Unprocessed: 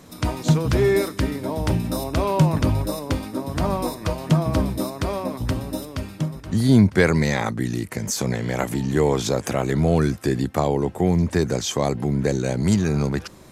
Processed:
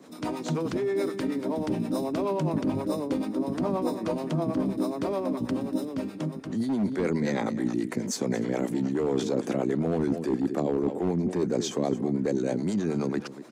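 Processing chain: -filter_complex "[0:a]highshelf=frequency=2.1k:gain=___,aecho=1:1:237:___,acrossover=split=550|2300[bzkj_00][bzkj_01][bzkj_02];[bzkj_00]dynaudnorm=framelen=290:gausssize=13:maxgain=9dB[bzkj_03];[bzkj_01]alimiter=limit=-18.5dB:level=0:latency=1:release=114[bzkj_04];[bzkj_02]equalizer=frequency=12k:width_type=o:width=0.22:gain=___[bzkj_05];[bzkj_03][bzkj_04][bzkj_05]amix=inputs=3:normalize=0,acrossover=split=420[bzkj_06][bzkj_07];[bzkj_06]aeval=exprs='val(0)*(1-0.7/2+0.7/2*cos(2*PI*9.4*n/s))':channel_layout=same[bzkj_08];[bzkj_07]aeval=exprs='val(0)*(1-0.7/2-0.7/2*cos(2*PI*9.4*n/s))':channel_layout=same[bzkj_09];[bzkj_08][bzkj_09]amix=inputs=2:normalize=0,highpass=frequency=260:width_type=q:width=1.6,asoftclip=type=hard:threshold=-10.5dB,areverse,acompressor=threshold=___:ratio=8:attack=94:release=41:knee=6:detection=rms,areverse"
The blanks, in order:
-4.5, 0.15, -11, -29dB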